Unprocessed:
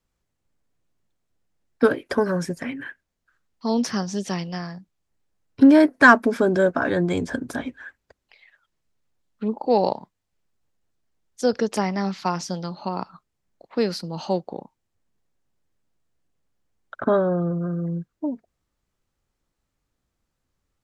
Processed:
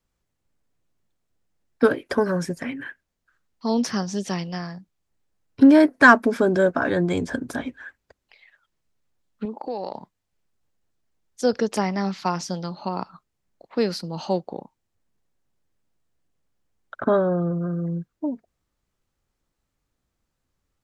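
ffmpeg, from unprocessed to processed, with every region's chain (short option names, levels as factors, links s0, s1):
-filter_complex "[0:a]asettb=1/sr,asplit=3[s0][s1][s2];[s0]atrim=end=9.454[s3];[s1]atrim=start=9.45:end=9.94,asetpts=PTS-STARTPTS,afade=t=in:d=0.004:c=qsin,afade=t=out:st=0.486:d=0.004:c=qsin,highpass=f=220:p=1,acompressor=threshold=0.0447:ratio=4:attack=3.2:release=140:knee=1:detection=peak[s4];[s2]atrim=start=9.936[s5];[s3][s4]acrossfade=d=0.004:c1=hsin:c2=qsin[s6];[s6][s5]acrossfade=d=0.004:c1=qsin:c2=hsin"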